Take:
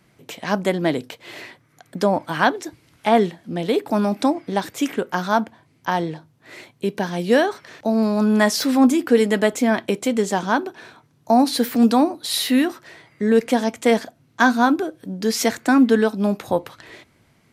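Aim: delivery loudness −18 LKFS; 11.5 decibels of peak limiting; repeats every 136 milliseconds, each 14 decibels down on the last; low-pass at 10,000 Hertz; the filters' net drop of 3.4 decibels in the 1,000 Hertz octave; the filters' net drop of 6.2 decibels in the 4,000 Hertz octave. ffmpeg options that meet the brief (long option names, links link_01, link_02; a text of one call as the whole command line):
ffmpeg -i in.wav -af "lowpass=10000,equalizer=frequency=1000:width_type=o:gain=-4.5,equalizer=frequency=4000:width_type=o:gain=-7.5,alimiter=limit=-16dB:level=0:latency=1,aecho=1:1:136|272:0.2|0.0399,volume=8dB" out.wav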